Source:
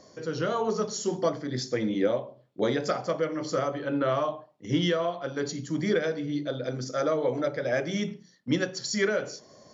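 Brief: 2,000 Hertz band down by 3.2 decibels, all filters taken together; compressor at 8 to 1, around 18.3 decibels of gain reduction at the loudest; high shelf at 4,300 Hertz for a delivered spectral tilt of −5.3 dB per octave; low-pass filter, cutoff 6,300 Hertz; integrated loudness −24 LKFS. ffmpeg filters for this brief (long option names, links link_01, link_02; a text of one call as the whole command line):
ffmpeg -i in.wav -af "lowpass=6300,equalizer=frequency=2000:width_type=o:gain=-3.5,highshelf=frequency=4300:gain=-3.5,acompressor=threshold=-41dB:ratio=8,volume=21dB" out.wav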